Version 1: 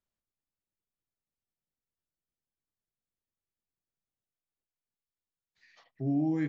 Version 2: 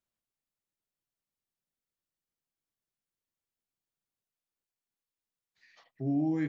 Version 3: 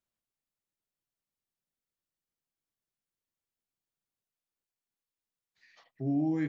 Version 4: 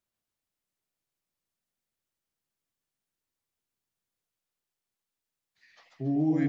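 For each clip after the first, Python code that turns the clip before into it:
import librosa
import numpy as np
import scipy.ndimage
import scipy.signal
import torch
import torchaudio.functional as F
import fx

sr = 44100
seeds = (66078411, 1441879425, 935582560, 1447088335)

y1 = fx.low_shelf(x, sr, hz=62.0, db=-9.0)
y2 = y1
y3 = fx.echo_warbled(y2, sr, ms=142, feedback_pct=57, rate_hz=2.8, cents=202, wet_db=-3.5)
y3 = y3 * 10.0 ** (1.5 / 20.0)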